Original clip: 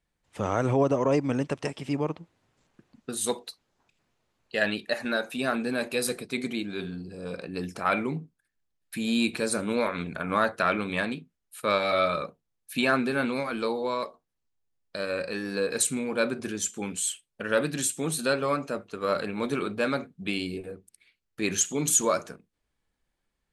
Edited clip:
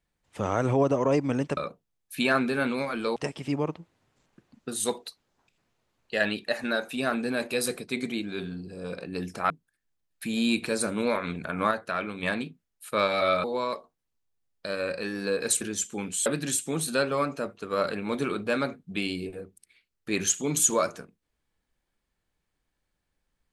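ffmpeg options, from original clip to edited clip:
-filter_complex "[0:a]asplit=9[a][b][c][d][e][f][g][h][i];[a]atrim=end=1.572[j];[b]atrim=start=12.148:end=13.742[k];[c]atrim=start=1.568:end=7.912[l];[d]atrim=start=8.208:end=10.422[m];[e]atrim=start=10.418:end=10.942,asetpts=PTS-STARTPTS,volume=-5.5dB[n];[f]atrim=start=10.938:end=12.152[o];[g]atrim=start=13.738:end=15.912[p];[h]atrim=start=16.448:end=17.102[q];[i]atrim=start=17.568[r];[j][k]acrossfade=d=0.004:c1=hsin:c2=hsin[s];[s][l]acrossfade=d=0.004:c1=hsin:c2=hsin[t];[t][m]acrossfade=d=0.004:c1=hsin:c2=hsin[u];[u][n]acrossfade=d=0.004:c1=hsin:c2=hsin[v];[v][o]acrossfade=d=0.004:c1=hsin:c2=hsin[w];[w][p]acrossfade=d=0.004:c1=hsin:c2=hsin[x];[x][q]acrossfade=d=0.004:c1=hsin:c2=hsin[y];[y][r]acrossfade=d=0.004:c1=hsin:c2=hsin"

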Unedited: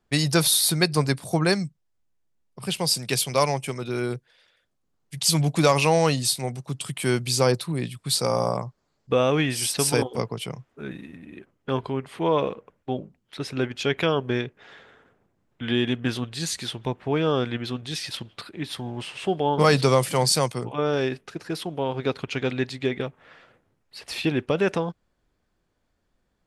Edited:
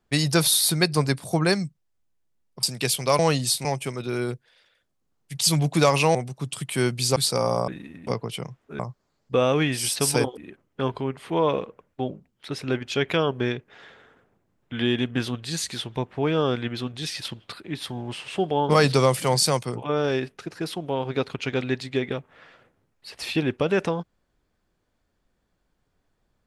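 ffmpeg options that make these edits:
-filter_complex "[0:a]asplit=10[a][b][c][d][e][f][g][h][i][j];[a]atrim=end=2.632[k];[b]atrim=start=2.908:end=3.472[l];[c]atrim=start=5.968:end=6.432[m];[d]atrim=start=3.468:end=5.972[n];[e]atrim=start=6.428:end=7.442[o];[f]atrim=start=8.048:end=8.572[p];[g]atrim=start=10.868:end=11.262[q];[h]atrim=start=10.148:end=10.872[r];[i]atrim=start=8.568:end=10.152[s];[j]atrim=start=11.258[t];[k][l]acrossfade=d=0.004:c1=hsin:c2=hsin[u];[u][m]acrossfade=d=0.004:c1=hsin:c2=hsin[v];[v][n]acrossfade=d=0.004:c1=hsin:c2=hsin[w];[w][o]acrossfade=d=0.004:c1=hsin:c2=hsin[x];[x][p]acrossfade=d=0.004:c1=hsin:c2=hsin[y];[y][q]acrossfade=d=0.004:c1=hsin:c2=hsin[z];[z][r]acrossfade=d=0.004:c1=hsin:c2=hsin[aa];[aa][s]acrossfade=d=0.004:c1=hsin:c2=hsin[ab];[ab][t]acrossfade=d=0.004:c1=hsin:c2=hsin"

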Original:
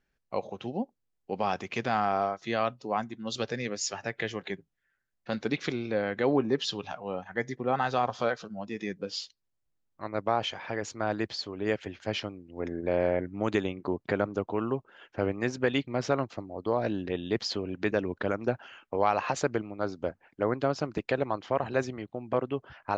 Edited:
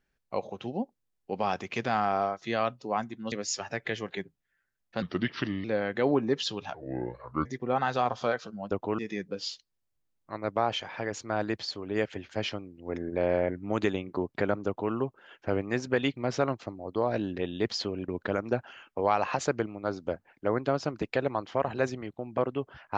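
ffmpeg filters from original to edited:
-filter_complex "[0:a]asplit=9[a][b][c][d][e][f][g][h][i];[a]atrim=end=3.322[j];[b]atrim=start=3.648:end=5.354[k];[c]atrim=start=5.35:end=5.86,asetpts=PTS-STARTPTS,asetrate=36162,aresample=44100,atrim=end_sample=27428,asetpts=PTS-STARTPTS[l];[d]atrim=start=5.856:end=6.964[m];[e]atrim=start=6.96:end=7.43,asetpts=PTS-STARTPTS,asetrate=29106,aresample=44100[n];[f]atrim=start=7.426:end=8.692[o];[g]atrim=start=14.368:end=14.642[p];[h]atrim=start=8.688:end=17.792[q];[i]atrim=start=18.038[r];[j][k]acrossfade=d=0.004:c1=hsin:c2=hsin[s];[s][l]acrossfade=d=0.004:c1=hsin:c2=hsin[t];[t][m]acrossfade=d=0.004:c1=hsin:c2=hsin[u];[u][n]acrossfade=d=0.004:c1=hsin:c2=hsin[v];[v][o]acrossfade=d=0.004:c1=hsin:c2=hsin[w];[w][p]acrossfade=d=0.004:c1=hsin:c2=hsin[x];[x][q]acrossfade=d=0.004:c1=hsin:c2=hsin[y];[y][r]acrossfade=d=0.004:c1=hsin:c2=hsin"

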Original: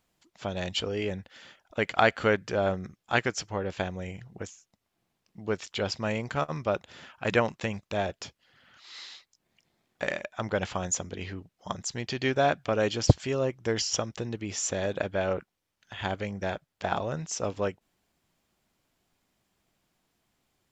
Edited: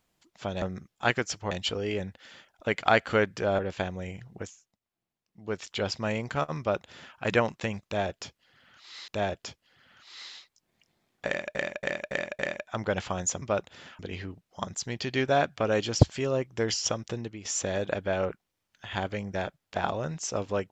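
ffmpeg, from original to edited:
-filter_complex "[0:a]asplit=14[a][b][c][d][e][f][g][h][i][j][k][l][m][n];[a]atrim=end=0.622[o];[b]atrim=start=2.698:end=3.592[p];[c]atrim=start=0.618:end=2.702[q];[d]atrim=start=3.588:end=4.8,asetpts=PTS-STARTPTS,afade=t=out:st=0.832:d=0.38:silence=0.266073[r];[e]atrim=start=4.8:end=5.29,asetpts=PTS-STARTPTS,volume=-11.5dB[s];[f]atrim=start=5.29:end=9.082,asetpts=PTS-STARTPTS,afade=t=in:d=0.38:silence=0.266073[t];[g]atrim=start=7.848:end=10.322[u];[h]atrim=start=10.038:end=10.322[v];[i]atrim=start=10.038:end=10.322[w];[j]atrim=start=10.038:end=10.322[x];[k]atrim=start=10.038:end=11.072[y];[l]atrim=start=6.588:end=7.162[z];[m]atrim=start=11.068:end=14.53,asetpts=PTS-STARTPTS,afade=t=out:st=3.172:d=0.29:silence=0.266073[aa];[n]atrim=start=14.53,asetpts=PTS-STARTPTS,afade=t=in:d=0.004:c=hsin:silence=0.266073[ab];[o][p]acrossfade=d=0.004:c1=hsin:c2=hsin[ac];[ac][q]acrossfade=d=0.004:c1=hsin:c2=hsin[ad];[r][s][t]concat=n=3:v=0:a=1[ae];[ad][ae]acrossfade=d=0.004:c1=hsin:c2=hsin[af];[af][u]acrossfade=d=0.004:c1=hsin:c2=hsin[ag];[ag][v]acrossfade=d=0.004:c1=hsin:c2=hsin[ah];[ah][w]acrossfade=d=0.004:c1=hsin:c2=hsin[ai];[ai][x]acrossfade=d=0.004:c1=hsin:c2=hsin[aj];[aj][y]acrossfade=d=0.004:c1=hsin:c2=hsin[ak];[ak][z]acrossfade=d=0.004:c1=hsin:c2=hsin[al];[aa][ab]concat=n=2:v=0:a=1[am];[al][am]acrossfade=d=0.004:c1=hsin:c2=hsin"

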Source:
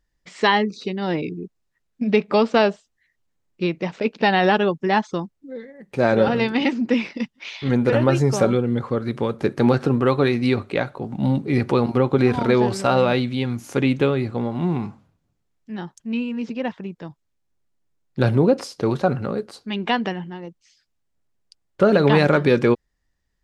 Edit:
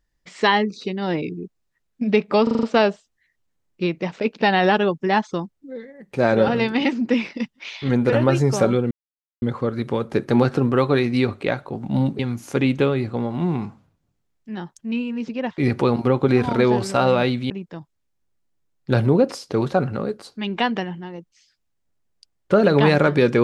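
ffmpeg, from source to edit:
-filter_complex "[0:a]asplit=10[a][b][c][d][e][f][g][h][i][j];[a]atrim=end=2.472[k];[b]atrim=start=2.428:end=2.472[l];[c]atrim=start=2.428:end=2.472[m];[d]atrim=start=2.428:end=2.472[n];[e]atrim=start=2.428:end=2.472[o];[f]atrim=start=2.428:end=8.71,asetpts=PTS-STARTPTS,afade=t=out:st=6.278:d=0.004:c=hsin,apad=pad_dur=0.51[p];[g]atrim=start=8.71:end=11.482,asetpts=PTS-STARTPTS,afade=t=in:d=0.004:c=hsin[q];[h]atrim=start=13.398:end=16.792[r];[i]atrim=start=11.478:end=13.402[s];[j]atrim=start=16.788[t];[k][l]acrossfade=d=0.004:c1=hsin:c2=hsin[u];[u][m]acrossfade=d=0.004:c1=hsin:c2=hsin[v];[v][n]acrossfade=d=0.004:c1=hsin:c2=hsin[w];[w][o]acrossfade=d=0.004:c1=hsin:c2=hsin[x];[p][q]concat=n=2:v=0:a=1[y];[x][y]acrossfade=d=0.004:c1=hsin:c2=hsin[z];[z][r]acrossfade=d=0.004:c1=hsin:c2=hsin[aa];[aa][s]acrossfade=d=0.004:c1=hsin:c2=hsin[ab];[ab][t]acrossfade=d=0.004:c1=hsin:c2=hsin"

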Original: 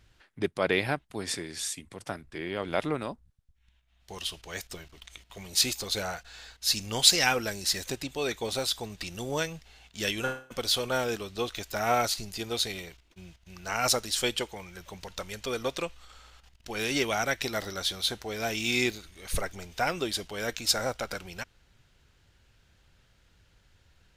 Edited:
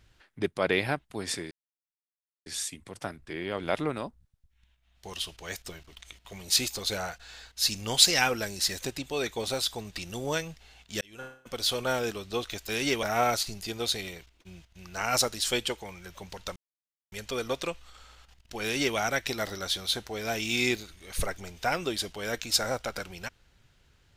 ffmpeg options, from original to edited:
-filter_complex "[0:a]asplit=6[a][b][c][d][e][f];[a]atrim=end=1.51,asetpts=PTS-STARTPTS,afade=t=out:st=1.506:d=0.004:c=hsin,apad=pad_dur=0.95[g];[b]atrim=start=1.51:end=10.06,asetpts=PTS-STARTPTS,afade=t=in:d=0.004:c=hsin,afade=t=out:st=8.546:d=0.004:c=hsin[h];[c]atrim=start=10.06:end=11.742,asetpts=PTS-STARTPTS,afade=t=in:d=0.76[i];[d]atrim=start=16.778:end=17.122[j];[e]atrim=start=11.738:end=15.27,asetpts=PTS-STARTPTS,afade=t=out:st=3.528:d=0.004:c=hsin,apad=pad_dur=0.56[k];[f]atrim=start=15.27,asetpts=PTS-STARTPTS,afade=t=in:d=0.004:c=hsin[l];[g][h][i]concat=n=3:v=0:a=1[m];[m][j]acrossfade=d=0.004:c1=hsin:c2=hsin[n];[k][l]concat=n=2:v=0:a=1[o];[n][o]acrossfade=d=0.004:c1=hsin:c2=hsin"

